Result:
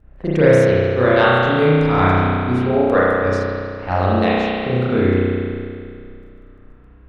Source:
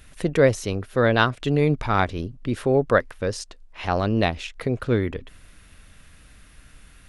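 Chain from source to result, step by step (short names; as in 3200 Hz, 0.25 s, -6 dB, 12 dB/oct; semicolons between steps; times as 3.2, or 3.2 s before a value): low-pass opened by the level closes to 730 Hz, open at -19 dBFS; crackle 15/s -54 dBFS; spring tank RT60 2.3 s, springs 32 ms, chirp 50 ms, DRR -9.5 dB; gain -3 dB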